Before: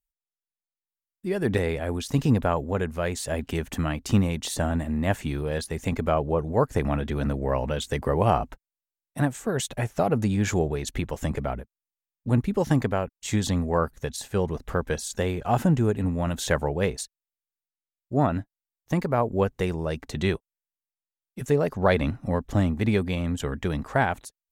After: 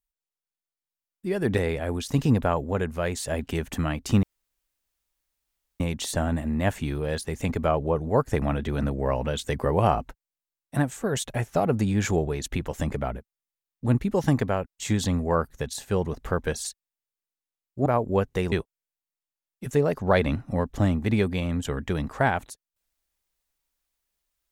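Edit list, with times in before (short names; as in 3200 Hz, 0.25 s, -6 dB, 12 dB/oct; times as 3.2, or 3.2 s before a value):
4.23 insert room tone 1.57 s
15.07–16.98 cut
18.2–19.1 cut
19.76–20.27 cut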